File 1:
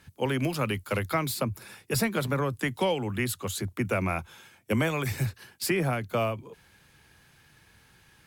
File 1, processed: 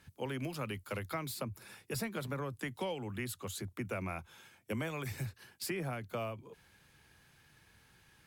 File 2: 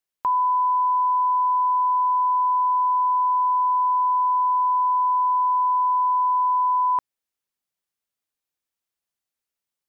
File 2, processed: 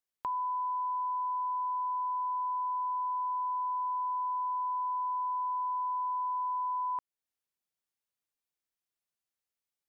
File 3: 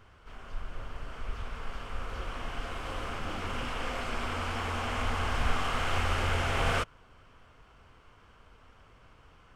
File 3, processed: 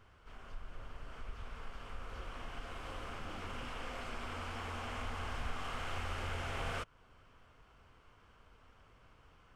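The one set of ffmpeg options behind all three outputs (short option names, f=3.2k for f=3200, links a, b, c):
-af "acompressor=threshold=-39dB:ratio=1.5,volume=-5.5dB"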